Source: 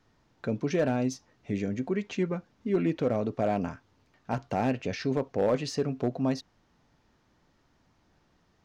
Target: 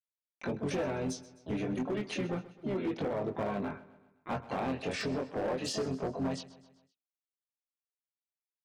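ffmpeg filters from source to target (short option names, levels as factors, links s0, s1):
-filter_complex "[0:a]highpass=f=190:p=1,afftdn=nr=33:nf=-52,agate=range=0.00112:threshold=0.00251:ratio=16:detection=peak,acompressor=threshold=0.0355:ratio=16,asplit=3[s0][s1][s2];[s1]asetrate=29433,aresample=44100,atempo=1.49831,volume=0.316[s3];[s2]asetrate=66075,aresample=44100,atempo=0.66742,volume=0.355[s4];[s0][s3][s4]amix=inputs=3:normalize=0,flanger=delay=20:depth=3.7:speed=0.28,asoftclip=type=hard:threshold=0.0251,aecho=1:1:129|258|387|516:0.126|0.0642|0.0327|0.0167,volume=1.58"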